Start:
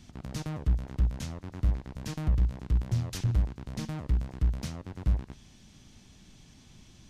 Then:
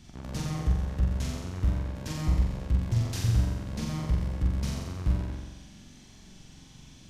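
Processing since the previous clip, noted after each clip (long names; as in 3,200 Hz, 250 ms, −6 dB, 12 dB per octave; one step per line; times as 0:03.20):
flutter between parallel walls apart 7.6 metres, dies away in 1.2 s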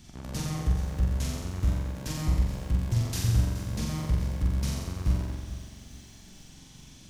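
high-shelf EQ 7,300 Hz +8.5 dB
feedback echo at a low word length 425 ms, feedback 35%, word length 8 bits, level −14 dB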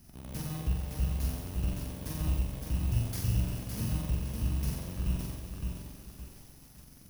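samples in bit-reversed order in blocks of 16 samples
feedback echo at a low word length 563 ms, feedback 35%, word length 8 bits, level −4.5 dB
level −5 dB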